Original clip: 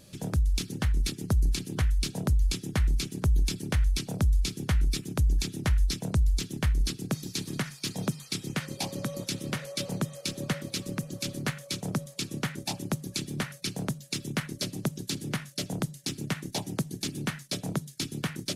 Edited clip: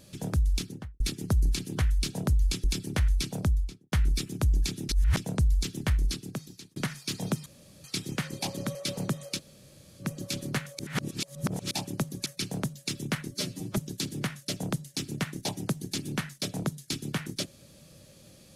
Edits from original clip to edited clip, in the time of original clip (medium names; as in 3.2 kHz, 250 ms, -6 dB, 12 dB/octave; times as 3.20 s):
0.53–1.00 s: studio fade out
2.64–3.40 s: delete
4.13–4.68 s: studio fade out
5.65–5.93 s: reverse
6.74–7.52 s: fade out
8.22 s: insert room tone 0.38 s
9.13–9.67 s: delete
10.30–10.94 s: room tone, crossfade 0.06 s
11.71–12.63 s: reverse
13.18–13.51 s: delete
14.56–14.87 s: stretch 1.5×